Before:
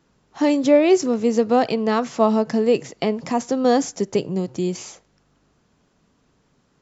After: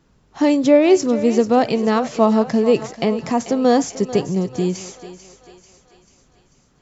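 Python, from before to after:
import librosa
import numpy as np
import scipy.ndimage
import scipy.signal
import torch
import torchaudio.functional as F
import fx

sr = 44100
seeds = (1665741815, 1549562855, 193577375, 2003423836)

y = fx.low_shelf(x, sr, hz=100.0, db=11.0)
y = fx.echo_thinned(y, sr, ms=441, feedback_pct=55, hz=430.0, wet_db=-12.5)
y = F.gain(torch.from_numpy(y), 1.5).numpy()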